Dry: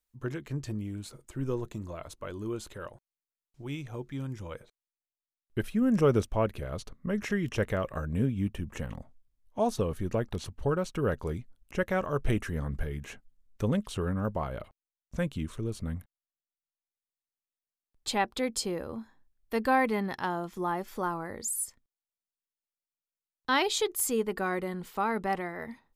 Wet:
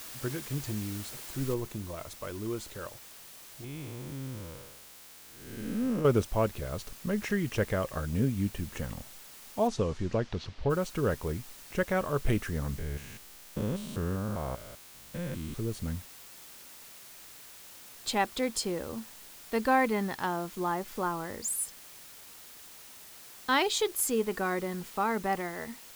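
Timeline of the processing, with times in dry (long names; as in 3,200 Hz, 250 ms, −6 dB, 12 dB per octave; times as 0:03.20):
0:01.54: noise floor change −44 dB −50 dB
0:03.64–0:06.05: spectrum smeared in time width 284 ms
0:09.67–0:10.69: low-pass filter 8,000 Hz → 4,300 Hz 24 dB per octave
0:12.78–0:15.56: spectrum averaged block by block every 200 ms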